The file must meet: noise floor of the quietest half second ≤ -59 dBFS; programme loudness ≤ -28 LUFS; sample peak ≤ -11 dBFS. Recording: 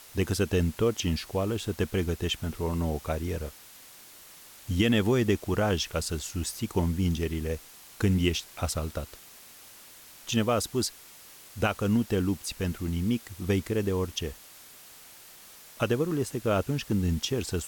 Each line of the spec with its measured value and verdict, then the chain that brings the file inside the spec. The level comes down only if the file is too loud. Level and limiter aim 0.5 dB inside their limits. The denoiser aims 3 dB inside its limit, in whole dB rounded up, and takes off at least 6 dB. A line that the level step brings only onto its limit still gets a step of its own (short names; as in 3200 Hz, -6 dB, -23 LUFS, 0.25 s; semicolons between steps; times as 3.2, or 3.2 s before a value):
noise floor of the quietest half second -50 dBFS: fail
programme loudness -29.0 LUFS: OK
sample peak -11.5 dBFS: OK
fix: denoiser 12 dB, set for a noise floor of -50 dBFS